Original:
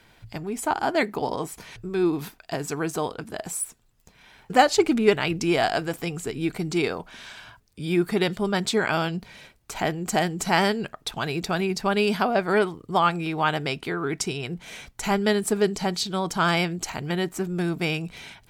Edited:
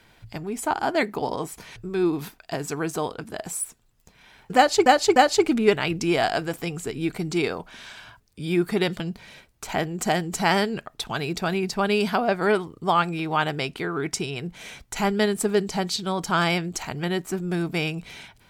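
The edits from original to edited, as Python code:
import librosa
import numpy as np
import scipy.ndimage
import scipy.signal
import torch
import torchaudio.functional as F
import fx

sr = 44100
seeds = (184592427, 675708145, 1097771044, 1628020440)

y = fx.edit(x, sr, fx.repeat(start_s=4.56, length_s=0.3, count=3),
    fx.cut(start_s=8.4, length_s=0.67), tone=tone)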